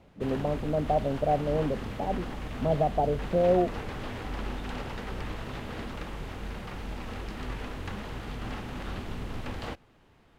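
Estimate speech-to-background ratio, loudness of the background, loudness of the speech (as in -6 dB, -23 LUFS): 9.5 dB, -38.0 LUFS, -28.5 LUFS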